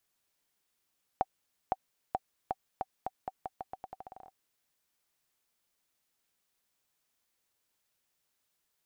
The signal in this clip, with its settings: bouncing ball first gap 0.51 s, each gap 0.84, 761 Hz, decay 38 ms -15 dBFS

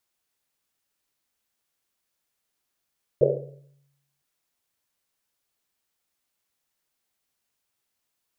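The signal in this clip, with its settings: Risset drum length 1.01 s, pitch 140 Hz, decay 1.02 s, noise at 490 Hz, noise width 210 Hz, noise 75%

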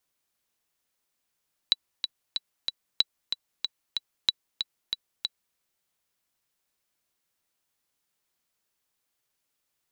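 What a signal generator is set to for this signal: metronome 187 bpm, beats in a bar 4, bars 3, 3940 Hz, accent 7.5 dB -7 dBFS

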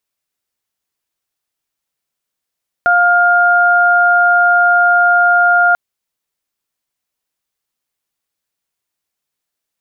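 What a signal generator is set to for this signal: steady additive tone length 2.89 s, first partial 705 Hz, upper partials 3 dB, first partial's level -12 dB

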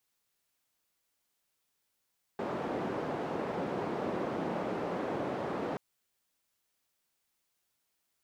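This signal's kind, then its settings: noise band 190–590 Hz, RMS -35 dBFS 3.38 s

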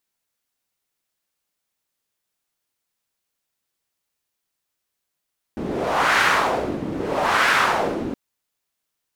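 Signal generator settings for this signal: wind-like swept noise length 2.57 s, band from 260 Hz, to 1600 Hz, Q 1.7, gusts 2, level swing 10 dB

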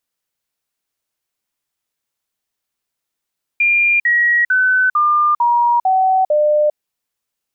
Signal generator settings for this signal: stepped sine 2400 Hz down, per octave 3, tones 7, 0.40 s, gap 0.05 s -10.5 dBFS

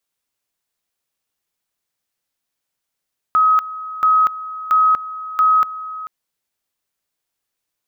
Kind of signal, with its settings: two-level tone 1270 Hz -10 dBFS, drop 16 dB, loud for 0.24 s, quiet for 0.44 s, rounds 4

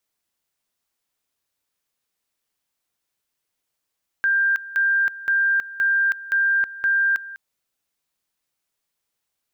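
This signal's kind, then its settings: two-level tone 1590 Hz -16 dBFS, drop 17 dB, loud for 0.32 s, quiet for 0.20 s, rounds 6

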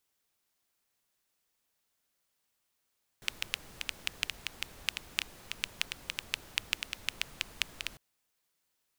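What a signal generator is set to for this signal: rain from filtered ticks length 4.75 s, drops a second 6.6, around 2700 Hz, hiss -12 dB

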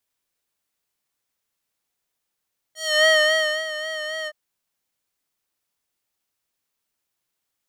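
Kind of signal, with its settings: synth patch with vibrato D#5, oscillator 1 square, oscillator 2 triangle, interval +12 st, oscillator 2 level -14.5 dB, sub -26 dB, noise -27 dB, filter bandpass, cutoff 1200 Hz, Q 0.96, filter envelope 2.5 oct, attack 0.286 s, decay 0.61 s, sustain -14 dB, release 0.05 s, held 1.52 s, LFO 3.7 Hz, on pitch 39 cents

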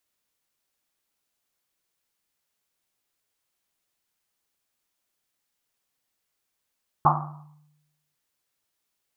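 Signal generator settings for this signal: Risset drum, pitch 150 Hz, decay 1.04 s, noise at 970 Hz, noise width 480 Hz, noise 65%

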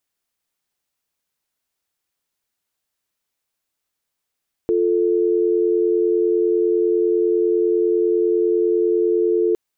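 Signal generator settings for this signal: call progress tone dial tone, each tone -17.5 dBFS 4.86 s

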